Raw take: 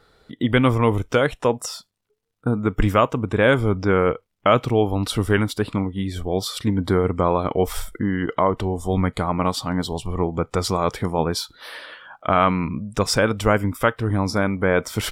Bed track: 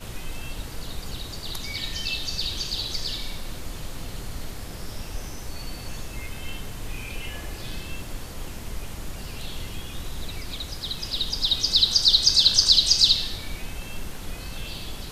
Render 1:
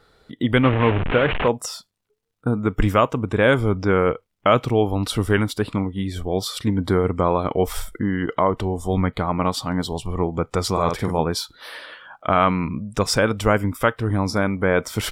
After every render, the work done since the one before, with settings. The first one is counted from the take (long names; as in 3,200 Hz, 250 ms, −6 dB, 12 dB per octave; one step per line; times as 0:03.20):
0:00.63–0:01.48: linear delta modulator 16 kbit/s, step −16 dBFS
0:08.94–0:09.52: flat-topped bell 7,600 Hz −13 dB 1.3 octaves
0:10.72–0:11.20: double-tracking delay 48 ms −5 dB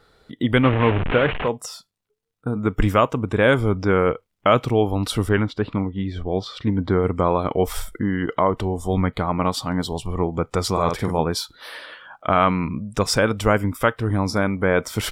0:01.30–0:02.56: tuned comb filter 150 Hz, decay 0.16 s, harmonics odd, mix 40%
0:05.29–0:07.03: high-frequency loss of the air 200 metres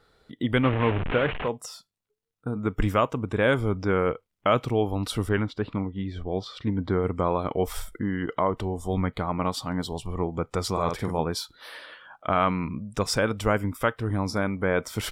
level −5.5 dB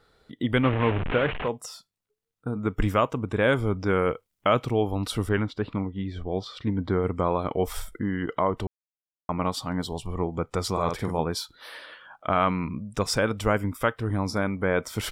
0:03.86–0:04.49: high-shelf EQ 4,800 Hz +9 dB
0:08.67–0:09.29: silence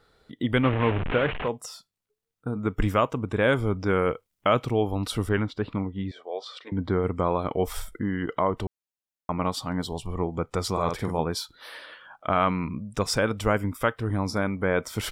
0:06.11–0:06.72: Chebyshev band-pass filter 490–9,900 Hz, order 3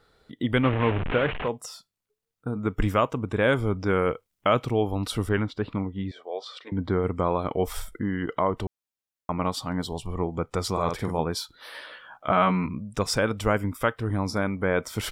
0:11.73–0:12.66: double-tracking delay 16 ms −3 dB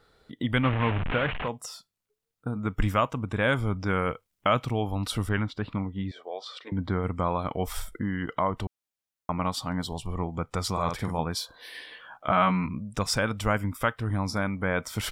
0:11.41–0:11.97: healed spectral selection 460–1,700 Hz before
dynamic equaliser 400 Hz, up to −8 dB, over −39 dBFS, Q 1.5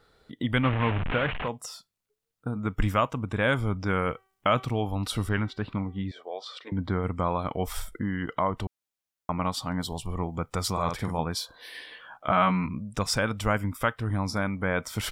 0:04.02–0:05.99: hum removal 383.1 Hz, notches 16
0:09.81–0:10.73: high-shelf EQ 9,600 Hz +7.5 dB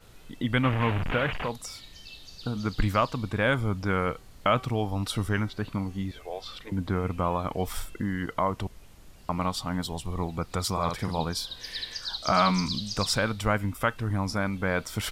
mix in bed track −17 dB